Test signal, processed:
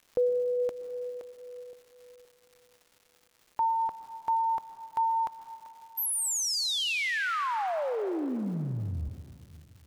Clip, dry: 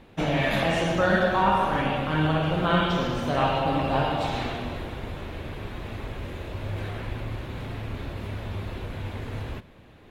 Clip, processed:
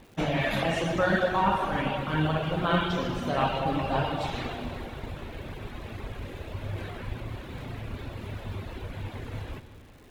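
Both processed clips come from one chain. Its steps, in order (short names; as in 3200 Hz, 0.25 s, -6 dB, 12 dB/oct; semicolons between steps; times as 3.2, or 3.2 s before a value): reverb removal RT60 0.83 s; plate-style reverb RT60 2.5 s, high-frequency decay 0.95×, pre-delay 0.105 s, DRR 10 dB; crackle 360/s -47 dBFS; gain -1.5 dB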